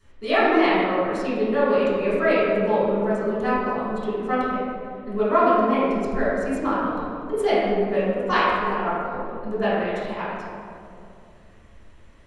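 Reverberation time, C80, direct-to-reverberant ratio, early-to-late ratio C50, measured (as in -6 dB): 2.5 s, -1.0 dB, -12.5 dB, -3.0 dB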